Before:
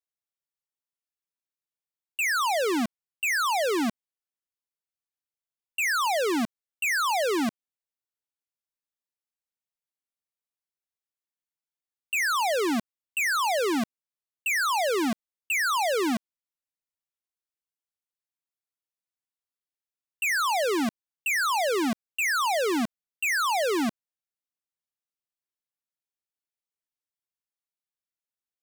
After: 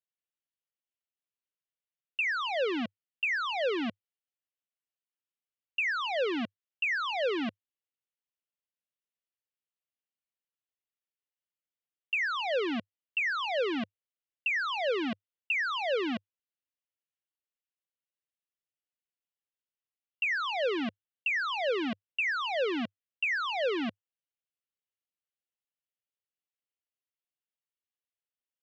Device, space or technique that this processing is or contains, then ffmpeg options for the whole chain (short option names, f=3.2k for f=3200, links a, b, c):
guitar cabinet: -af "highpass=90,equalizer=f=100:t=q:w=4:g=6,equalizer=f=520:t=q:w=4:g=6,equalizer=f=920:t=q:w=4:g=-7,equalizer=f=1.9k:t=q:w=4:g=3,equalizer=f=2.9k:t=q:w=4:g=8,lowpass=f=4k:w=0.5412,lowpass=f=4k:w=1.3066,volume=-6.5dB"